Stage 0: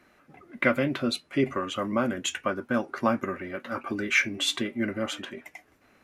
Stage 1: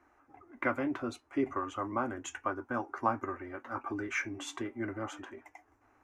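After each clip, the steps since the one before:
drawn EQ curve 110 Hz 0 dB, 170 Hz −24 dB, 290 Hz 0 dB, 570 Hz −8 dB, 830 Hz +5 dB, 4,100 Hz −18 dB, 6,300 Hz −6 dB, 11,000 Hz −15 dB
level −3 dB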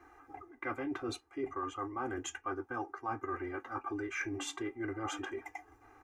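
comb filter 2.5 ms, depth 94%
reversed playback
downward compressor 5 to 1, threshold −40 dBFS, peak gain reduction 17.5 dB
reversed playback
level +4 dB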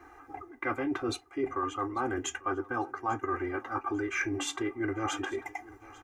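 repeating echo 845 ms, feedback 34%, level −21.5 dB
level +6 dB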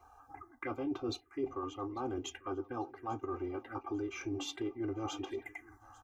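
phaser swept by the level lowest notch 290 Hz, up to 1,800 Hz, full sweep at −30 dBFS
level −4 dB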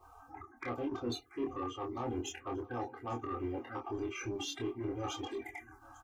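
spectral magnitudes quantised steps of 30 dB
soft clipping −32.5 dBFS, distortion −16 dB
double-tracking delay 25 ms −3 dB
level +1 dB

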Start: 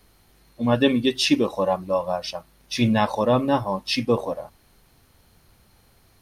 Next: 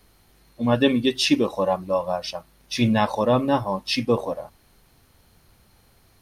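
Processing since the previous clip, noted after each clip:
no processing that can be heard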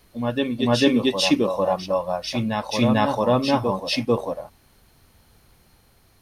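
backwards echo 446 ms −5 dB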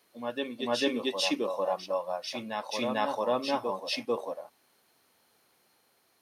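high-pass filter 340 Hz 12 dB per octave
level −7.5 dB

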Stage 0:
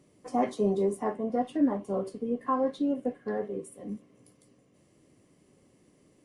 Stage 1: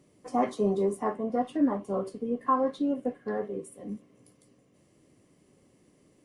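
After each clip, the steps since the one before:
dynamic equaliser 1,200 Hz, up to +6 dB, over −47 dBFS, Q 2.5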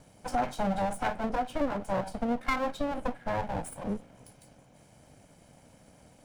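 lower of the sound and its delayed copy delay 1.3 ms
downward compressor 3 to 1, threshold −36 dBFS, peak gain reduction 10 dB
level +8 dB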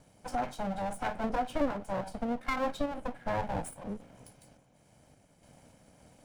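sample-and-hold tremolo 3.5 Hz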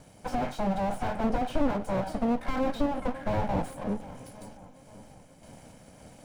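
feedback echo with a low-pass in the loop 536 ms, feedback 59%, low-pass 1,500 Hz, level −19 dB
slew-rate limiting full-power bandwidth 12 Hz
level +7.5 dB

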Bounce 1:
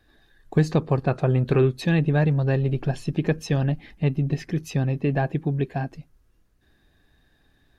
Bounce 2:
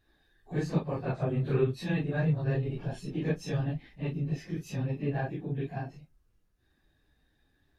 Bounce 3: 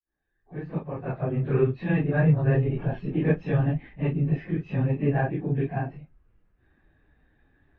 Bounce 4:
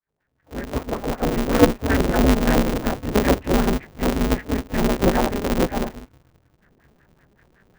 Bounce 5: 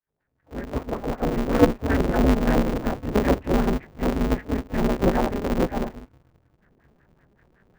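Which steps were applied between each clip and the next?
random phases in long frames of 100 ms; level −8.5 dB
fade in at the beginning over 2.30 s; low-pass filter 2,500 Hz 24 dB per octave; level +7.5 dB
one-sided soft clipper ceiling −14 dBFS; auto-filter low-pass sine 5.3 Hz 340–2,100 Hz; ring modulator with a square carrier 100 Hz; level +4.5 dB
high-shelf EQ 2,700 Hz −8.5 dB; level −2 dB

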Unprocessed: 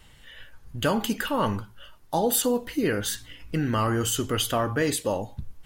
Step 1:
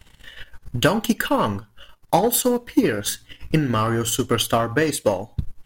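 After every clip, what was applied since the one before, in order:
leveller curve on the samples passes 1
transient designer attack +8 dB, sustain −8 dB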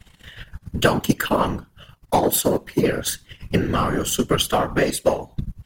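random phases in short frames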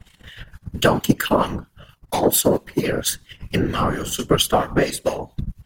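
two-band tremolo in antiphase 4.4 Hz, depth 70%, crossover 1,500 Hz
level +3.5 dB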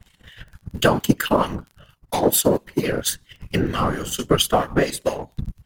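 in parallel at −4 dB: dead-zone distortion −33.5 dBFS
on the sum: surface crackle 15 per second −32 dBFS
level −4.5 dB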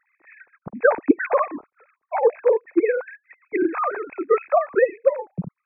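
three sine waves on the formant tracks
linear-phase brick-wall low-pass 2,600 Hz

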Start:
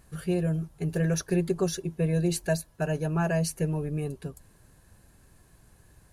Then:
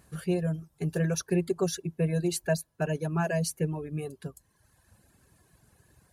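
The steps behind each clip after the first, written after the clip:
reverb reduction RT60 1.1 s
high-pass filter 71 Hz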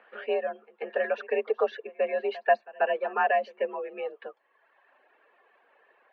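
echo ahead of the sound 138 ms −21 dB
single-sideband voice off tune +53 Hz 420–2,800 Hz
level +7 dB

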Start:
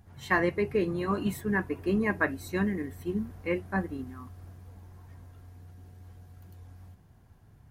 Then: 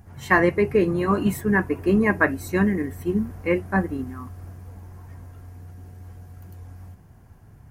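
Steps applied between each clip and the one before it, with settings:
parametric band 3,700 Hz −7 dB 0.65 octaves
level +8 dB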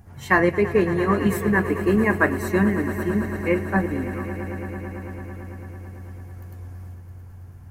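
echo that builds up and dies away 111 ms, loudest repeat 5, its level −16.5 dB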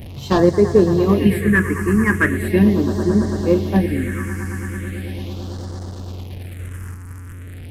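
linear delta modulator 64 kbit/s, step −34 dBFS
all-pass phaser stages 4, 0.39 Hz, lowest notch 610–2,400 Hz
level +6 dB

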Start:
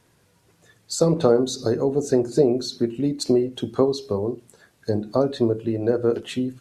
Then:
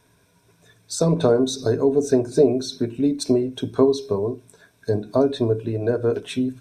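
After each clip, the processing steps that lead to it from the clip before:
EQ curve with evenly spaced ripples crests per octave 1.6, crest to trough 9 dB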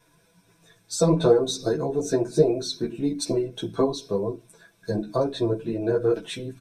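comb filter 6 ms, depth 81%
string-ensemble chorus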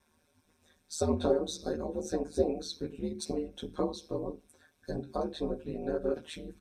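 ring modulation 78 Hz
level −6.5 dB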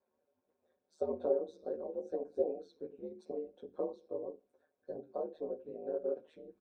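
resonant band-pass 520 Hz, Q 2.5
level −1.5 dB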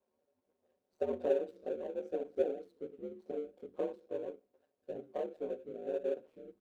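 running median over 25 samples
level +1 dB

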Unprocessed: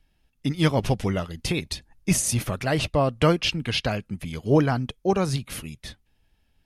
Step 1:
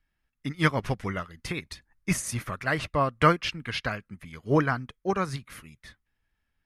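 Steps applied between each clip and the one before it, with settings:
flat-topped bell 1,500 Hz +9.5 dB 1.3 octaves
expander for the loud parts 1.5 to 1, over −32 dBFS
level −2.5 dB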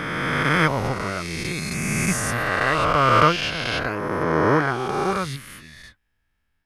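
peak hold with a rise ahead of every peak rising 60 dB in 3.00 s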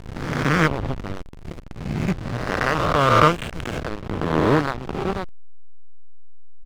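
downsampling to 8,000 Hz
slack as between gear wheels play −15 dBFS
level +2.5 dB

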